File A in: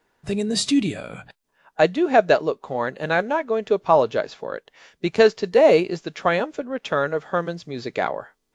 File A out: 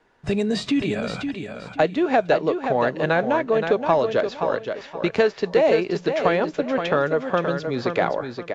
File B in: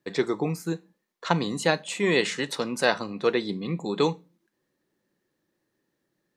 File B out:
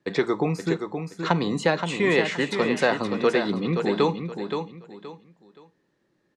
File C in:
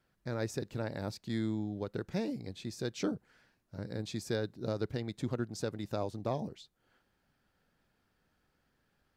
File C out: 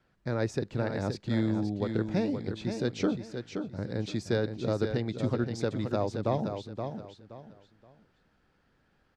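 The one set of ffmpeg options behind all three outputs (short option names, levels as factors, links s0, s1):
-filter_complex "[0:a]lowpass=8700,highshelf=f=5900:g=-10.5,acrossover=split=570|2700[s0][s1][s2];[s0]acompressor=threshold=0.0447:ratio=4[s3];[s1]acompressor=threshold=0.0447:ratio=4[s4];[s2]acompressor=threshold=0.00794:ratio=4[s5];[s3][s4][s5]amix=inputs=3:normalize=0,asplit=2[s6][s7];[s7]asoftclip=type=tanh:threshold=0.0944,volume=0.316[s8];[s6][s8]amix=inputs=2:normalize=0,aecho=1:1:523|1046|1569:0.447|0.121|0.0326,volume=1.5"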